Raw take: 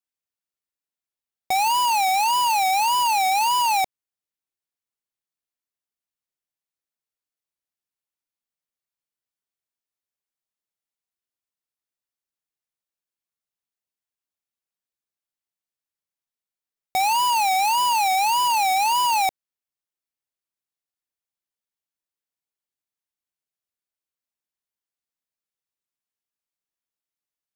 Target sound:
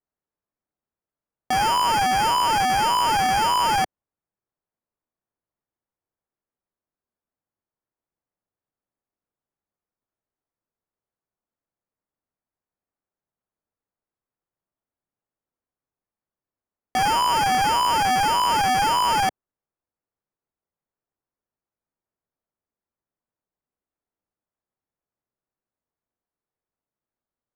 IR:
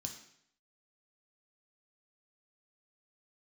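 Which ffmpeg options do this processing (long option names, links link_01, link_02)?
-filter_complex "[0:a]acrossover=split=170[link_01][link_02];[link_02]acrusher=samples=11:mix=1:aa=0.000001[link_03];[link_01][link_03]amix=inputs=2:normalize=0,adynamicsmooth=sensitivity=6.5:basefreq=1500"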